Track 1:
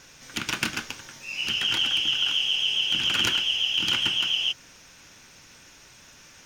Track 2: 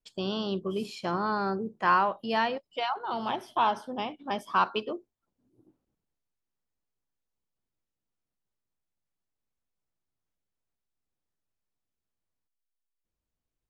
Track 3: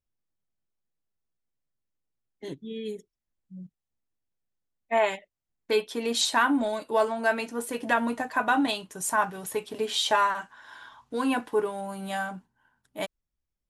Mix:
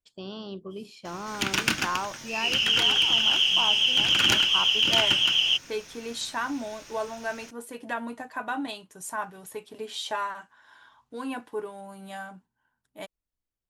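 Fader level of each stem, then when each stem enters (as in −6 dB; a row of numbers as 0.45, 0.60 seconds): +2.5, −7.0, −7.5 decibels; 1.05, 0.00, 0.00 seconds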